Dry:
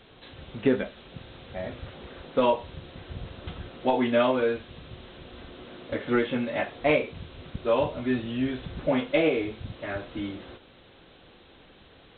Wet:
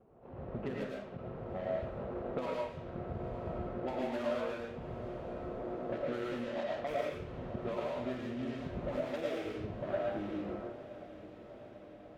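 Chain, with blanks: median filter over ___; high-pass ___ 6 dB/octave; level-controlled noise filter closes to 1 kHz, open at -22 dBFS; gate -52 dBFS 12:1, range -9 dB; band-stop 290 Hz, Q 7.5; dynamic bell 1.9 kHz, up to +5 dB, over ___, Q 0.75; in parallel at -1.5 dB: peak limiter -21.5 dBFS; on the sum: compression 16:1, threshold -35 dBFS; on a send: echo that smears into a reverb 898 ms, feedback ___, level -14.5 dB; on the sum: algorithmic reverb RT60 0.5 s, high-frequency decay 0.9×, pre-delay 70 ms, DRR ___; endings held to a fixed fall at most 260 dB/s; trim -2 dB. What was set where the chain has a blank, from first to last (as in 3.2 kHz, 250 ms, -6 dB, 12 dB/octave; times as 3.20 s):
25 samples, 130 Hz, -41 dBFS, 67%, -2.5 dB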